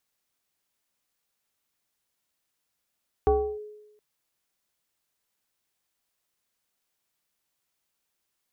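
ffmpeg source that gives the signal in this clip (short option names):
-f lavfi -i "aevalsrc='0.168*pow(10,-3*t/0.98)*sin(2*PI*422*t+1*clip(1-t/0.32,0,1)*sin(2*PI*0.84*422*t))':d=0.72:s=44100"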